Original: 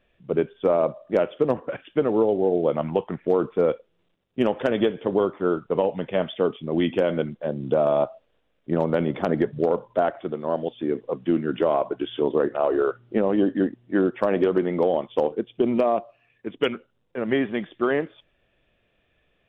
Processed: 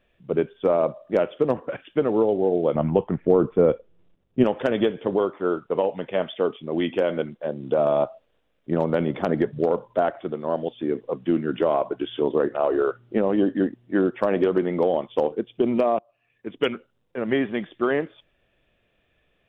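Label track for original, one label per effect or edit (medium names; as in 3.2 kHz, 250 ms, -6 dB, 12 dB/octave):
2.750000	4.440000	tilt EQ -2.5 dB/octave
5.160000	7.790000	tone controls bass -6 dB, treble -2 dB
15.990000	16.570000	fade in, from -20.5 dB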